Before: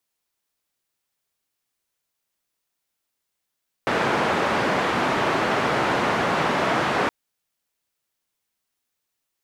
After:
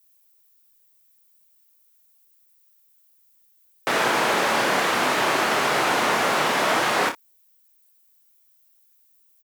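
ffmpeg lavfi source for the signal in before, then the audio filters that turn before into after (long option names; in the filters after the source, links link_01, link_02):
-f lavfi -i "anoisesrc=color=white:duration=3.22:sample_rate=44100:seed=1,highpass=frequency=140,lowpass=frequency=1300,volume=-4.9dB"
-af "aemphasis=mode=production:type=bsi,aecho=1:1:27|59:0.473|0.211"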